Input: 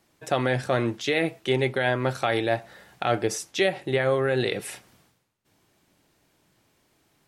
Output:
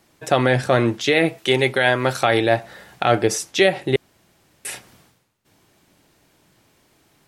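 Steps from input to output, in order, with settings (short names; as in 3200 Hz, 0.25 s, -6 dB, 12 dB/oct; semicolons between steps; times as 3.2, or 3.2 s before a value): 1.38–2.23 tilt +1.5 dB/oct; 3.96–4.65 room tone; gain +7 dB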